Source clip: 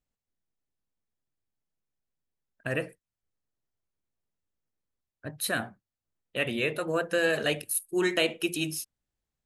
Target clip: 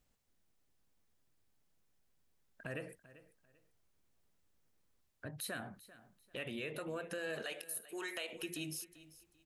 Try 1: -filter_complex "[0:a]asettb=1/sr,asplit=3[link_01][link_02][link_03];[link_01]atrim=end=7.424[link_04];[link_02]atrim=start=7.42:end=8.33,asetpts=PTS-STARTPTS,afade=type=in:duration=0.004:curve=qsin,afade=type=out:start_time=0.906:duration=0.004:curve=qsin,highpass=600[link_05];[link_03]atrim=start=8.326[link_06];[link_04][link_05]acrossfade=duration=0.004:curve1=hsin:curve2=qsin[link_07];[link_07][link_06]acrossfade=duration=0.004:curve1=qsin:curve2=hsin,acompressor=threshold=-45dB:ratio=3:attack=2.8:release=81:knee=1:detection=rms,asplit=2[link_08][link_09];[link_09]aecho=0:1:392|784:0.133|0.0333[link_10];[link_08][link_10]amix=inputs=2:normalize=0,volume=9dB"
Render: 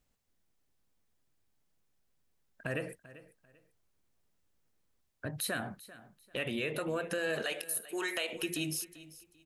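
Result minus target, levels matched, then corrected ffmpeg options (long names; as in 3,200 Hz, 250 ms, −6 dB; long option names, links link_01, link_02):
downward compressor: peak gain reduction −7.5 dB
-filter_complex "[0:a]asettb=1/sr,asplit=3[link_01][link_02][link_03];[link_01]atrim=end=7.424[link_04];[link_02]atrim=start=7.42:end=8.33,asetpts=PTS-STARTPTS,afade=type=in:duration=0.004:curve=qsin,afade=type=out:start_time=0.906:duration=0.004:curve=qsin,highpass=600[link_05];[link_03]atrim=start=8.326[link_06];[link_04][link_05]acrossfade=duration=0.004:curve1=hsin:curve2=qsin[link_07];[link_07][link_06]acrossfade=duration=0.004:curve1=qsin:curve2=hsin,acompressor=threshold=-56dB:ratio=3:attack=2.8:release=81:knee=1:detection=rms,asplit=2[link_08][link_09];[link_09]aecho=0:1:392|784:0.133|0.0333[link_10];[link_08][link_10]amix=inputs=2:normalize=0,volume=9dB"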